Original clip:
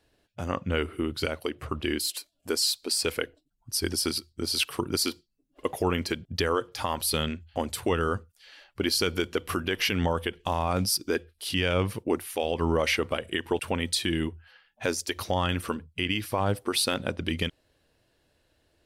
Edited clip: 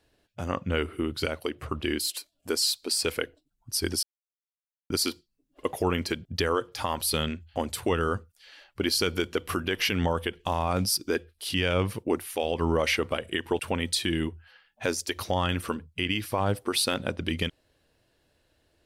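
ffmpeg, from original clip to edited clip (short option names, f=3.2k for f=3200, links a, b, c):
-filter_complex "[0:a]asplit=3[a][b][c];[a]atrim=end=4.03,asetpts=PTS-STARTPTS,afade=t=out:st=4.026:d=0.004:c=hsin[d];[b]atrim=start=4.03:end=4.9,asetpts=PTS-STARTPTS,volume=0[e];[c]atrim=start=4.9,asetpts=PTS-STARTPTS,afade=t=in:d=0.004:c=hsin[f];[d][e][f]concat=n=3:v=0:a=1"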